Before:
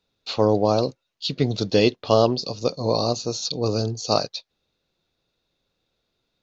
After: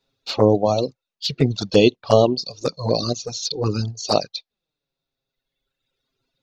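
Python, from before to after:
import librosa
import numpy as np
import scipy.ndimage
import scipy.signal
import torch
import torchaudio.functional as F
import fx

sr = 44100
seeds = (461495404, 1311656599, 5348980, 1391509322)

y = fx.env_flanger(x, sr, rest_ms=7.5, full_db=-15.5)
y = fx.dereverb_blind(y, sr, rt60_s=1.8)
y = y * librosa.db_to_amplitude(5.5)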